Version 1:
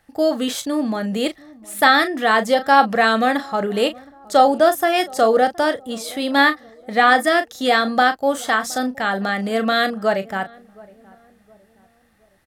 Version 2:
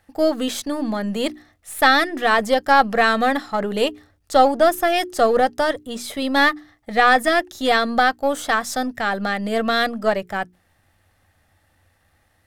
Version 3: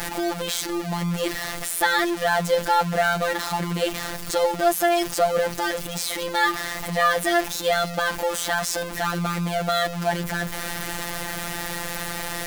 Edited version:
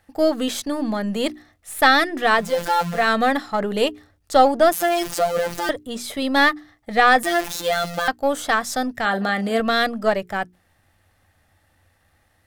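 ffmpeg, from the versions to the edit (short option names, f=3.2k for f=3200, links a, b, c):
-filter_complex "[2:a]asplit=3[a][b][c];[1:a]asplit=5[d][e][f][g][h];[d]atrim=end=2.59[i];[a]atrim=start=2.35:end=3.12[j];[e]atrim=start=2.88:end=4.722[k];[b]atrim=start=4.718:end=5.692[l];[f]atrim=start=5.688:end=7.232[m];[c]atrim=start=7.228:end=8.082[n];[g]atrim=start=8.078:end=9.052[o];[0:a]atrim=start=9.048:end=9.602[p];[h]atrim=start=9.598[q];[i][j]acrossfade=d=0.24:c1=tri:c2=tri[r];[r][k]acrossfade=d=0.24:c1=tri:c2=tri[s];[s][l]acrossfade=d=0.004:c1=hsin:c2=hsin[t];[t][m]acrossfade=d=0.004:c1=hsin:c2=hsin[u];[u][n]acrossfade=d=0.004:c1=hsin:c2=hsin[v];[v][o]acrossfade=d=0.004:c1=hsin:c2=hsin[w];[w][p]acrossfade=d=0.004:c1=hsin:c2=hsin[x];[x][q]acrossfade=d=0.004:c1=hsin:c2=hsin"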